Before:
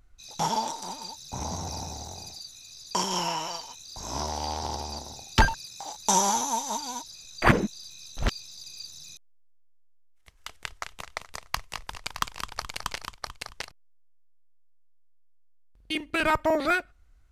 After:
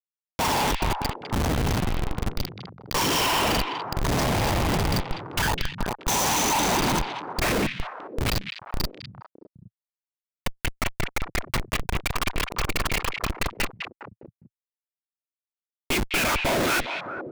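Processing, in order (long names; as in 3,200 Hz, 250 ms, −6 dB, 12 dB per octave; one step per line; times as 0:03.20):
noise reduction from a noise print of the clip's start 6 dB
dynamic equaliser 2,400 Hz, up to +7 dB, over −48 dBFS, Q 2.5
random phases in short frames
comparator with hysteresis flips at −35 dBFS
on a send: echo through a band-pass that steps 204 ms, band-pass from 2,700 Hz, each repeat −1.4 octaves, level −3 dB
on the sum: level +8.5 dB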